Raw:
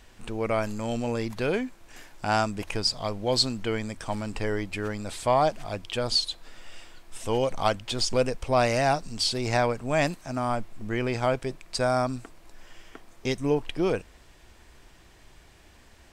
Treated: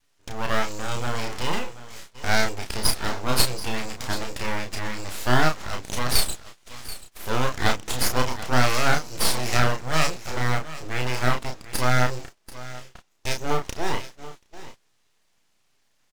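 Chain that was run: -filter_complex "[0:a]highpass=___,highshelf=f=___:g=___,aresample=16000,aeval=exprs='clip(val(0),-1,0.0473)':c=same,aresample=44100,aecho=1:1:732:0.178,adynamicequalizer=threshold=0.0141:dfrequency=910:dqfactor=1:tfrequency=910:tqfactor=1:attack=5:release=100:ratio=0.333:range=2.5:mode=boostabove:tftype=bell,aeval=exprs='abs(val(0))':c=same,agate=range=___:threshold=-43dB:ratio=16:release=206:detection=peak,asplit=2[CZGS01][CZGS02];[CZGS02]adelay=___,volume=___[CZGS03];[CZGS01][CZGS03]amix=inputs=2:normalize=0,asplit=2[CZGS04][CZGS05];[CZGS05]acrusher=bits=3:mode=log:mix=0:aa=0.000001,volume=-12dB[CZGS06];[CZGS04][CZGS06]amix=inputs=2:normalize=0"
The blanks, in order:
53, 4200, 11.5, -17dB, 32, -4.5dB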